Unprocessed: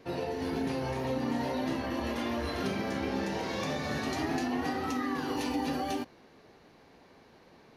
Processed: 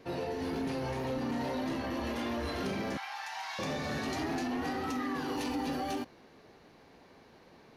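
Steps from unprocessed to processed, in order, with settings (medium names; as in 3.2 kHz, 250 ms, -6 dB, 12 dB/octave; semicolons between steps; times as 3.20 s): 2.97–3.59 s: elliptic high-pass 760 Hz, stop band 40 dB; saturation -28 dBFS, distortion -16 dB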